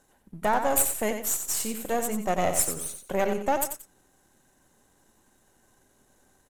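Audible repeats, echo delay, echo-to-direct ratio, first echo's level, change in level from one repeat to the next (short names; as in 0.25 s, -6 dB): 2, 90 ms, -7.0 dB, -7.5 dB, -11.0 dB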